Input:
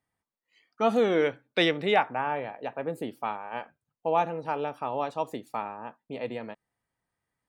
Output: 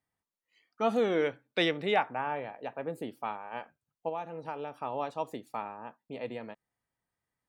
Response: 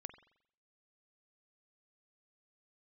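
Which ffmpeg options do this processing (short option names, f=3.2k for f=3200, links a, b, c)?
-filter_complex "[0:a]asplit=3[a][b][c];[a]afade=t=out:st=4.08:d=0.02[d];[b]acompressor=threshold=-30dB:ratio=4,afade=t=in:st=4.08:d=0.02,afade=t=out:st=4.75:d=0.02[e];[c]afade=t=in:st=4.75:d=0.02[f];[d][e][f]amix=inputs=3:normalize=0,volume=-4dB"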